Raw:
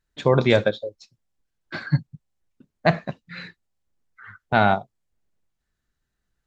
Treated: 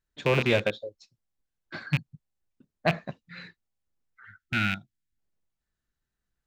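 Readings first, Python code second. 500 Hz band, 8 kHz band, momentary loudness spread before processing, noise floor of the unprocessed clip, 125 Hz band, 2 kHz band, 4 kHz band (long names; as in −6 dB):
−7.5 dB, can't be measured, 18 LU, −80 dBFS, −6.0 dB, −3.0 dB, −2.5 dB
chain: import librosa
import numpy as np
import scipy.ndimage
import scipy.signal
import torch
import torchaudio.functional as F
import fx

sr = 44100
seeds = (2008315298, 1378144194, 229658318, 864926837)

y = fx.rattle_buzz(x, sr, strikes_db=-24.0, level_db=-10.0)
y = fx.spec_box(y, sr, start_s=4.25, length_s=0.93, low_hz=350.0, high_hz=1300.0, gain_db=-22)
y = y * librosa.db_to_amplitude(-6.5)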